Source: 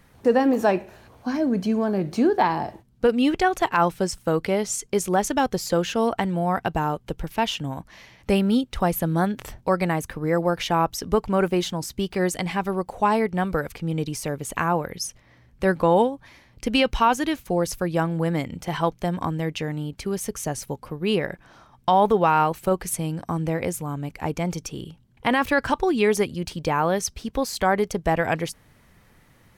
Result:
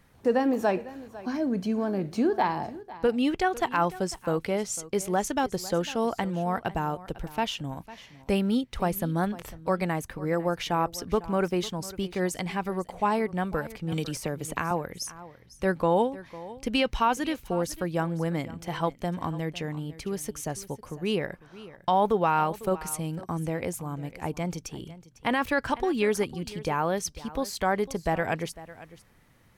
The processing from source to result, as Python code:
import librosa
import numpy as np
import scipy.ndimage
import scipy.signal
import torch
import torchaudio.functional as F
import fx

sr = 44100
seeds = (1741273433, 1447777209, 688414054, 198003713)

p1 = x + fx.echo_single(x, sr, ms=501, db=-17.5, dry=0)
p2 = fx.band_squash(p1, sr, depth_pct=100, at=(13.92, 14.71))
y = F.gain(torch.from_numpy(p2), -5.0).numpy()